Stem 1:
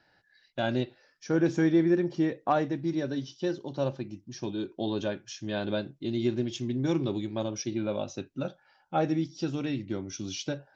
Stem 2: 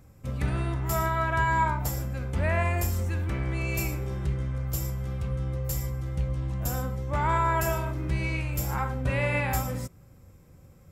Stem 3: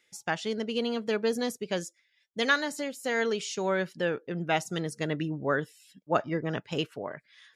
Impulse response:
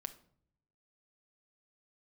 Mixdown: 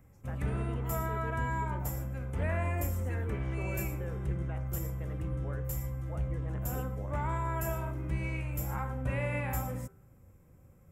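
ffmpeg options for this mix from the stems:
-filter_complex "[1:a]volume=-5dB[link_01];[2:a]volume=-6dB,lowpass=2100,alimiter=level_in=11dB:limit=-24dB:level=0:latency=1:release=432,volume=-11dB,volume=0dB[link_02];[link_01][link_02]amix=inputs=2:normalize=0,equalizer=frequency=4400:width_type=o:width=0.95:gain=-12.5,bandreject=frequency=78.2:width_type=h:width=4,bandreject=frequency=156.4:width_type=h:width=4,bandreject=frequency=234.6:width_type=h:width=4,bandreject=frequency=312.8:width_type=h:width=4,bandreject=frequency=391:width_type=h:width=4,bandreject=frequency=469.2:width_type=h:width=4,bandreject=frequency=547.4:width_type=h:width=4,bandreject=frequency=625.6:width_type=h:width=4,bandreject=frequency=703.8:width_type=h:width=4,bandreject=frequency=782:width_type=h:width=4,bandreject=frequency=860.2:width_type=h:width=4,bandreject=frequency=938.4:width_type=h:width=4,bandreject=frequency=1016.6:width_type=h:width=4,bandreject=frequency=1094.8:width_type=h:width=4,bandreject=frequency=1173:width_type=h:width=4,bandreject=frequency=1251.2:width_type=h:width=4,bandreject=frequency=1329.4:width_type=h:width=4,bandreject=frequency=1407.6:width_type=h:width=4,bandreject=frequency=1485.8:width_type=h:width=4,bandreject=frequency=1564:width_type=h:width=4,bandreject=frequency=1642.2:width_type=h:width=4,bandreject=frequency=1720.4:width_type=h:width=4,bandreject=frequency=1798.6:width_type=h:width=4,acrossover=split=480|3000[link_03][link_04][link_05];[link_04]acompressor=threshold=-35dB:ratio=6[link_06];[link_03][link_06][link_05]amix=inputs=3:normalize=0"

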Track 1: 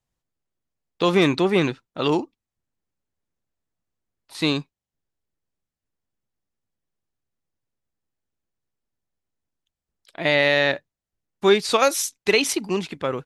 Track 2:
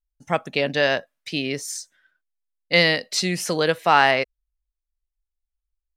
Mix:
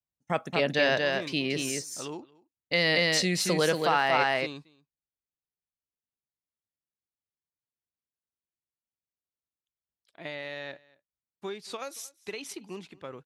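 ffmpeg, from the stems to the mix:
ffmpeg -i stem1.wav -i stem2.wav -filter_complex "[0:a]acompressor=threshold=-18dB:ratio=6,volume=-15.5dB,asplit=2[link_01][link_02];[link_02]volume=-23.5dB[link_03];[1:a]agate=range=-24dB:threshold=-43dB:ratio=16:detection=peak,volume=-3.5dB,asplit=3[link_04][link_05][link_06];[link_05]volume=-4.5dB[link_07];[link_06]apad=whole_len=584359[link_08];[link_01][link_08]sidechaincompress=threshold=-38dB:ratio=8:attack=16:release=153[link_09];[link_03][link_07]amix=inputs=2:normalize=0,aecho=0:1:229:1[link_10];[link_09][link_04][link_10]amix=inputs=3:normalize=0,highpass=45,alimiter=limit=-13.5dB:level=0:latency=1:release=16" out.wav

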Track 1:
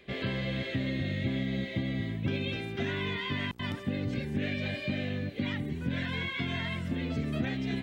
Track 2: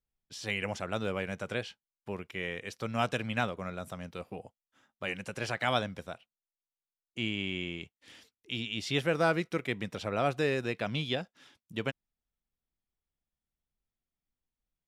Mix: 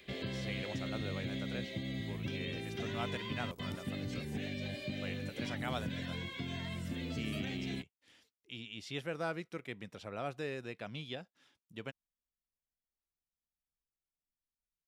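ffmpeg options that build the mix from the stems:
ffmpeg -i stem1.wav -i stem2.wav -filter_complex "[0:a]highshelf=frequency=2700:gain=11.5,acrossover=split=950|4200[link_01][link_02][link_03];[link_01]acompressor=threshold=-32dB:ratio=4[link_04];[link_02]acompressor=threshold=-46dB:ratio=4[link_05];[link_03]acompressor=threshold=-49dB:ratio=4[link_06];[link_04][link_05][link_06]amix=inputs=3:normalize=0,volume=-4.5dB[link_07];[1:a]volume=-10.5dB[link_08];[link_07][link_08]amix=inputs=2:normalize=0" out.wav

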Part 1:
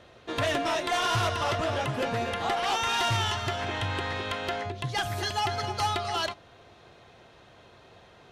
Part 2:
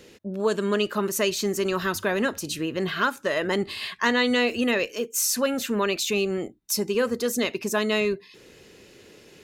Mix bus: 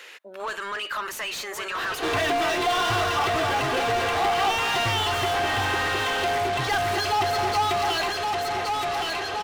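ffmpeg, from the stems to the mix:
ffmpeg -i stem1.wav -i stem2.wav -filter_complex "[0:a]aecho=1:1:2.6:0.77,adelay=1750,volume=2.5dB,asplit=2[link_01][link_02];[link_02]volume=-13dB[link_03];[1:a]alimiter=limit=-21dB:level=0:latency=1:release=21,highpass=1200,equalizer=frequency=5200:width_type=o:width=1.4:gain=-7.5,volume=-7dB,asplit=2[link_04][link_05];[link_05]volume=-6.5dB[link_06];[link_03][link_06]amix=inputs=2:normalize=0,aecho=0:1:1119|2238|3357|4476|5595:1|0.33|0.109|0.0359|0.0119[link_07];[link_01][link_04][link_07]amix=inputs=3:normalize=0,asplit=2[link_08][link_09];[link_09]highpass=frequency=720:poles=1,volume=31dB,asoftclip=type=tanh:threshold=-19dB[link_10];[link_08][link_10]amix=inputs=2:normalize=0,lowpass=frequency=2700:poles=1,volume=-6dB" out.wav

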